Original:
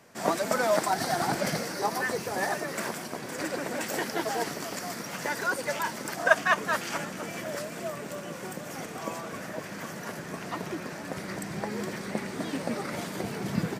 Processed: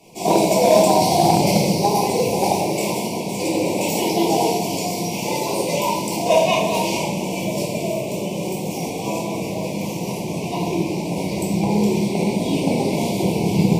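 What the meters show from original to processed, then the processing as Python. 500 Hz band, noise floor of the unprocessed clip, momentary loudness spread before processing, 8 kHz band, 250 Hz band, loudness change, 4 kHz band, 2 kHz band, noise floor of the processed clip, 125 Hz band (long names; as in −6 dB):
+12.5 dB, −40 dBFS, 12 LU, +10.5 dB, +14.5 dB, +11.0 dB, +11.5 dB, 0.0 dB, −27 dBFS, +15.5 dB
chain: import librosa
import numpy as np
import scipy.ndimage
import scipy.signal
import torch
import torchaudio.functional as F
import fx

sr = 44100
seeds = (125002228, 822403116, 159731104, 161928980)

y = scipy.signal.sosfilt(scipy.signal.ellip(3, 1.0, 40, [960.0, 2300.0], 'bandstop', fs=sr, output='sos'), x)
y = fx.room_shoebox(y, sr, seeds[0], volume_m3=500.0, walls='mixed', distance_m=3.4)
y = fx.cheby_harmonics(y, sr, harmonics=(3,), levels_db=(-26,), full_scale_db=-7.0)
y = y * librosa.db_to_amplitude(5.5)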